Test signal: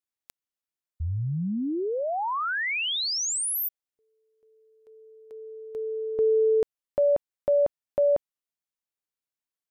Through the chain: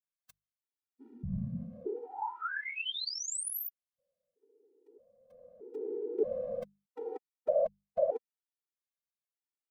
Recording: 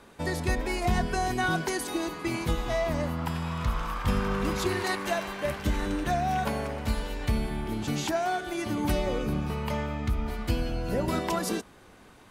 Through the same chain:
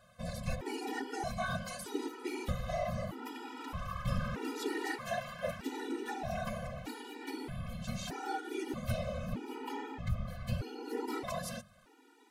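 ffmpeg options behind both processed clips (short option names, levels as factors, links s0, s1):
-af "afftfilt=real='hypot(re,im)*cos(2*PI*random(0))':imag='hypot(re,im)*sin(2*PI*random(1))':win_size=512:overlap=0.75,bandreject=f=50:t=h:w=6,bandreject=f=100:t=h:w=6,bandreject=f=150:t=h:w=6,bandreject=f=200:t=h:w=6,afftfilt=real='re*gt(sin(2*PI*0.8*pts/sr)*(1-2*mod(floor(b*sr/1024/250),2)),0)':imag='im*gt(sin(2*PI*0.8*pts/sr)*(1-2*mod(floor(b*sr/1024/250),2)),0)':win_size=1024:overlap=0.75"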